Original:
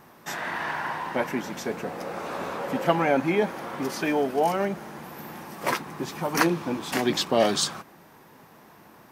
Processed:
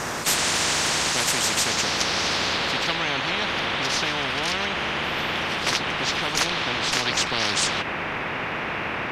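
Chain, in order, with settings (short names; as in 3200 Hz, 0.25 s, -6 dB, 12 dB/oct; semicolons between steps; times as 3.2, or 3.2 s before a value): harmoniser +3 st -17 dB; low-pass sweep 7200 Hz -> 2500 Hz, 1.4–3.01; spectral compressor 10:1; gain -7 dB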